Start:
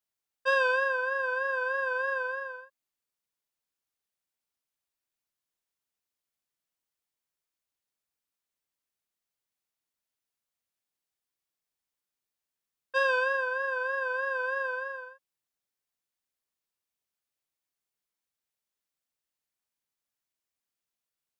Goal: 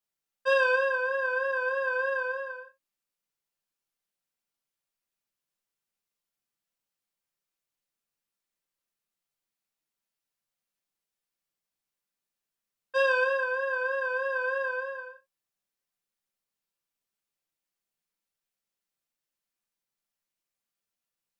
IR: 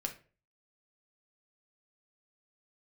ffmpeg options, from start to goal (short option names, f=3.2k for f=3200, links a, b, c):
-filter_complex "[1:a]atrim=start_sample=2205,atrim=end_sample=3969,asetrate=43659,aresample=44100[a];[0:a][a]afir=irnorm=-1:irlink=0"